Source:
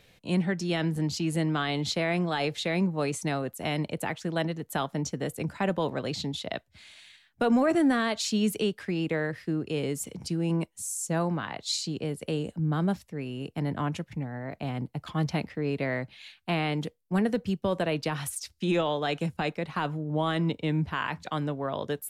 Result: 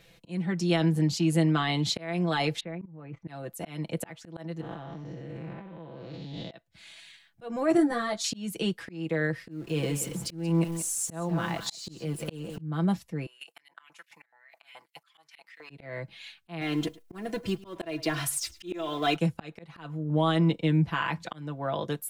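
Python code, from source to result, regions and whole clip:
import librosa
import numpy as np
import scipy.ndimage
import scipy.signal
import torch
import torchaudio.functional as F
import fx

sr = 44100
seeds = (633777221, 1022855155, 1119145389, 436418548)

y = fx.chain(x, sr, fx.lowpass(hz=2200.0, slope=24),
    fx.low_shelf(hz=230.0, db=6.0),
    fx.level_steps(step_db=20), at=(2.6, 3.28))
y = fx.chain(y, sr, fx.spec_blur(span_ms=256.0),
    fx.over_compress(threshold_db=-42.0, ratio=-1.0),
    fx.air_absorb(metres=240.0), at=(4.61, 6.51))
y = fx.chain(y, sr, fx.peak_eq(hz=2700.0, db=-12.0, octaves=0.49),
    fx.ensemble(), at=(7.77, 8.24))
y = fx.chain(y, sr, fx.zero_step(step_db=-43.0),
    fx.echo_single(ms=180, db=-11.5), at=(9.51, 12.61))
y = fx.chain(y, sr, fx.high_shelf(hz=4800.0, db=9.0),
    fx.level_steps(step_db=17),
    fx.filter_lfo_highpass(shape='saw_up', hz=4.7, low_hz=770.0, high_hz=2900.0, q=2.5), at=(13.26, 15.7))
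y = fx.chain(y, sr, fx.law_mismatch(coded='mu'),
    fx.comb(ms=2.9, depth=0.66),
    fx.echo_single(ms=105, db=-21.0), at=(16.61, 19.16))
y = y + 0.65 * np.pad(y, (int(6.0 * sr / 1000.0), 0))[:len(y)]
y = fx.auto_swell(y, sr, attack_ms=361.0)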